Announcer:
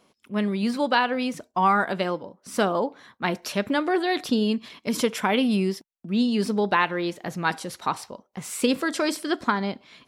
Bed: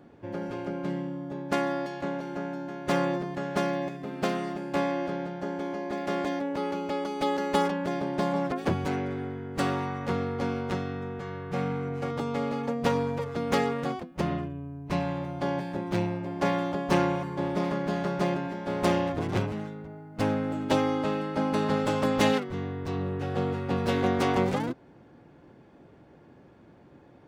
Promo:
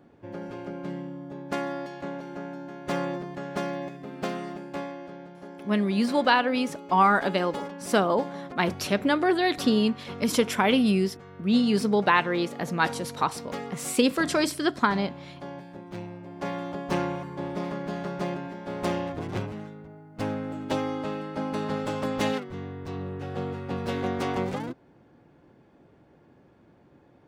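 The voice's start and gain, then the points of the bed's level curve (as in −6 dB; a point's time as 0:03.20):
5.35 s, +0.5 dB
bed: 0:04.56 −3 dB
0:04.98 −10 dB
0:16.02 −10 dB
0:16.78 −3.5 dB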